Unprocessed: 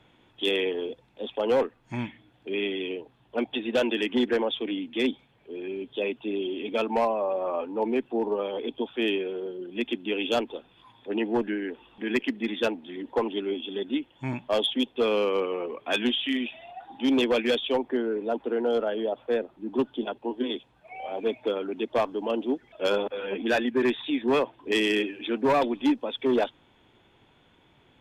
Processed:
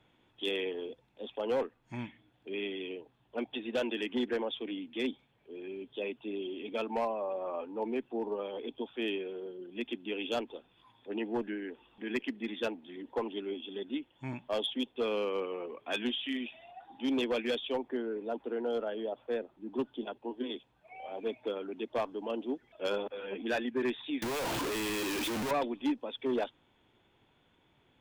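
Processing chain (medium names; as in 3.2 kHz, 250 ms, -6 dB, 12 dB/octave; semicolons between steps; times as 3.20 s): 24.22–25.51 s: one-bit comparator; trim -8 dB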